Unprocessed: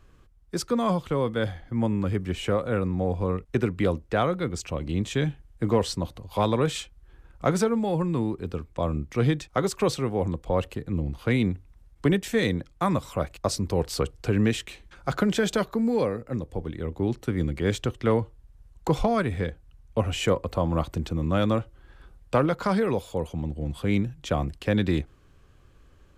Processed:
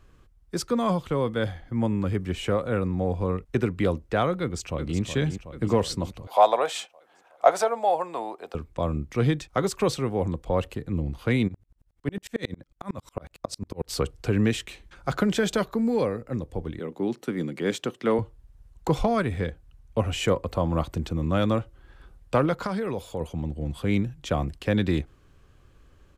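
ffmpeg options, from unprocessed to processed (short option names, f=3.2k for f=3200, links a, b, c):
-filter_complex "[0:a]asplit=2[a][b];[b]afade=t=in:st=4.41:d=0.01,afade=t=out:st=5:d=0.01,aecho=0:1:370|740|1110|1480|1850|2220|2590|2960|3330:0.375837|0.244294|0.158791|0.103214|0.0670893|0.0436081|0.0283452|0.0184244|0.0119759[c];[a][c]amix=inputs=2:normalize=0,asettb=1/sr,asplit=3[d][e][f];[d]atrim=end=6.274[g];[e]atrim=start=6.27:end=8.55,asetpts=PTS-STARTPTS,afade=t=in:d=0.004:c=qsin,afade=t=out:st=2.276:d=0.004:c=qsin,highpass=f=690:t=q:w=5[h];[f]atrim=start=8.546[i];[g][h]acrossfade=d=0.004:c1=hsin:c2=qsin[j];[j][i]acrossfade=d=0.004:c1=qsin:c2=hsin,asplit=3[k][l][m];[k]afade=t=out:st=11.47:d=0.02[n];[l]aeval=exprs='val(0)*pow(10,-37*if(lt(mod(-11*n/s,1),2*abs(-11)/1000),1-mod(-11*n/s,1)/(2*abs(-11)/1000),(mod(-11*n/s,1)-2*abs(-11)/1000)/(1-2*abs(-11)/1000))/20)':c=same,afade=t=in:st=11.47:d=0.02,afade=t=out:st=13.88:d=0.02[o];[m]afade=t=in:st=13.88:d=0.02[p];[n][o][p]amix=inputs=3:normalize=0,asettb=1/sr,asplit=3[q][r][s];[q]atrim=end=16.794[t];[r]atrim=start=16.79:end=18.19,asetpts=PTS-STARTPTS,afade=t=in:d=0.004:c=qsin,afade=t=out:st=1.396:d=0.004:c=qsin,highpass=f=170:w=0.5412,highpass=f=170:w=1.3066[u];[s]atrim=start=18.186[v];[t][u]acrossfade=d=0.004:c1=hsin:c2=qsin[w];[w][v]acrossfade=d=0.004:c1=qsin:c2=hsin,asettb=1/sr,asplit=3[x][y][z];[x]atrim=end=22.664[aa];[y]atrim=start=22.66:end=23.21,asetpts=PTS-STARTPTS,afade=t=in:d=0.004:c=qsin,afade=t=out:st=0.546:d=0.004:c=qsin,acompressor=threshold=-26dB:ratio=3:attack=3.2:release=140:knee=1:detection=peak[ab];[z]atrim=start=23.206[ac];[aa][ab]acrossfade=d=0.004:c1=hsin:c2=qsin[ad];[ad][ac]acrossfade=d=0.004:c1=qsin:c2=hsin"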